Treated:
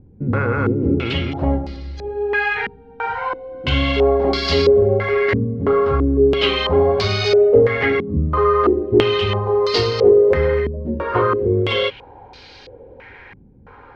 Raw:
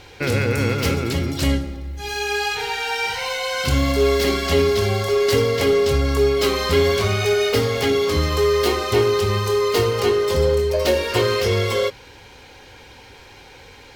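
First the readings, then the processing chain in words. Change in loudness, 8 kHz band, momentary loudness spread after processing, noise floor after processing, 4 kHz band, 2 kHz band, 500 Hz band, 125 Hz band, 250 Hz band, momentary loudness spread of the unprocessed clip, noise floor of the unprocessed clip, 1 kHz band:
+2.0 dB, under -10 dB, 11 LU, -44 dBFS, 0.0 dB, +1.0 dB, +2.5 dB, +0.5 dB, +3.5 dB, 5 LU, -44 dBFS, +3.0 dB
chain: distance through air 79 m; step-sequenced low-pass 3 Hz 210–4700 Hz

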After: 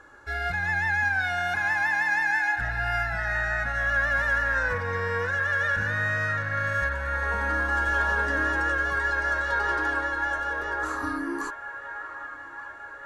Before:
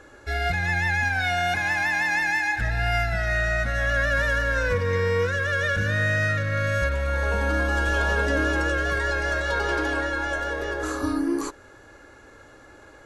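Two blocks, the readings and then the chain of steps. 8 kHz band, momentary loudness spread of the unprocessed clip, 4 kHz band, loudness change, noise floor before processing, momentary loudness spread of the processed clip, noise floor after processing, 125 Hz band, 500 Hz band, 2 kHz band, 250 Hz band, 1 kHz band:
no reading, 5 LU, -7.5 dB, -1.5 dB, -49 dBFS, 11 LU, -41 dBFS, -7.5 dB, -7.0 dB, 0.0 dB, -7.5 dB, +0.5 dB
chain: high-order bell 1.2 kHz +8.5 dB 1.3 oct; on a send: feedback echo behind a band-pass 1177 ms, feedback 65%, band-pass 1.3 kHz, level -10.5 dB; on the sum: trim -7.5 dB

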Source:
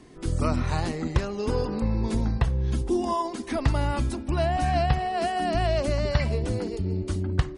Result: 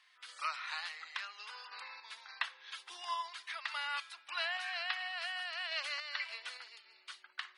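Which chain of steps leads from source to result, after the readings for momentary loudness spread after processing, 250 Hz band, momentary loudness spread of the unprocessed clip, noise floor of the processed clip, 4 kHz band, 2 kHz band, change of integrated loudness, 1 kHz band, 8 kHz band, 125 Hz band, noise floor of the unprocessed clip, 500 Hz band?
12 LU, under -40 dB, 4 LU, -66 dBFS, -1.0 dB, -1.5 dB, -13.0 dB, -14.0 dB, -12.5 dB, under -40 dB, -37 dBFS, -27.5 dB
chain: high-pass 1.3 kHz 24 dB/octave; resonant high shelf 5.2 kHz -9.5 dB, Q 1.5; random-step tremolo, depth 55%; trim +1.5 dB

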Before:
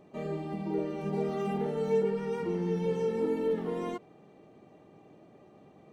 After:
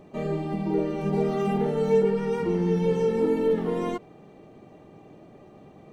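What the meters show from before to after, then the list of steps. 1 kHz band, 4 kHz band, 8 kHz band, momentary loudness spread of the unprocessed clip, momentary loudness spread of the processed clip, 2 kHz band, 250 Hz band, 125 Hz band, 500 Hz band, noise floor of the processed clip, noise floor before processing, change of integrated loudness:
+6.0 dB, +6.0 dB, no reading, 7 LU, 7 LU, +6.0 dB, +7.0 dB, +7.5 dB, +6.5 dB, -51 dBFS, -57 dBFS, +6.5 dB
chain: bass shelf 66 Hz +11.5 dB; trim +6 dB

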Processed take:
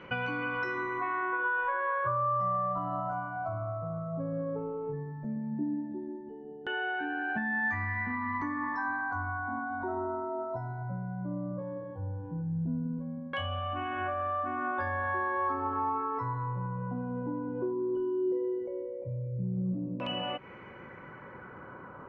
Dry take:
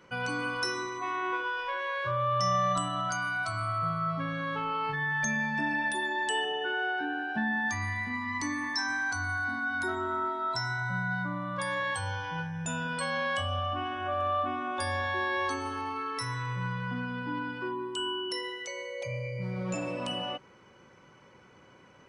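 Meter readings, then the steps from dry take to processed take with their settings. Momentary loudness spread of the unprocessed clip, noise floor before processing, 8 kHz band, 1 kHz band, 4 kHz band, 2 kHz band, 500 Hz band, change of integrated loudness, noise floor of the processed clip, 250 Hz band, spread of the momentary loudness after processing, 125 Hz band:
6 LU, -57 dBFS, under -35 dB, -1.5 dB, -9.0 dB, -4.0 dB, +0.5 dB, -2.0 dB, -47 dBFS, +1.5 dB, 9 LU, 0.0 dB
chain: treble shelf 2.2 kHz -10.5 dB; compression 10:1, threshold -41 dBFS, peak gain reduction 15.5 dB; LFO low-pass saw down 0.15 Hz 220–2800 Hz; trim +9 dB

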